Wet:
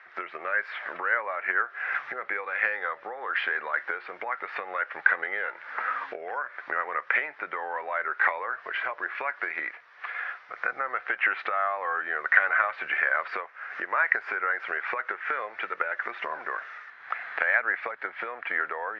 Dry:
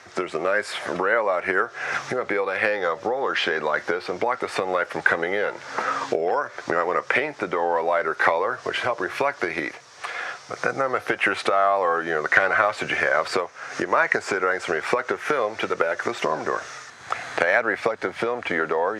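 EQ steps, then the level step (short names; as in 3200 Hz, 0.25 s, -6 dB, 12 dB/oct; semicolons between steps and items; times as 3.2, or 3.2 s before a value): band-pass 1800 Hz, Q 1.8; air absorption 290 m; +1.5 dB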